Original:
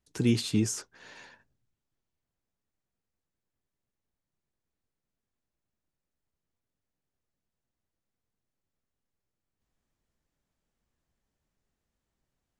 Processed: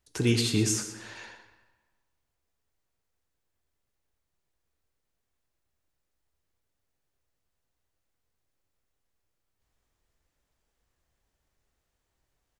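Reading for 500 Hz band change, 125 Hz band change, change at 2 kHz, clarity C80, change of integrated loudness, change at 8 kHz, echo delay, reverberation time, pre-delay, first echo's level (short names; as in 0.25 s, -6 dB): +3.5 dB, +2.5 dB, +6.0 dB, 8.5 dB, +2.0 dB, +5.5 dB, 0.122 s, 1.4 s, 24 ms, -12.0 dB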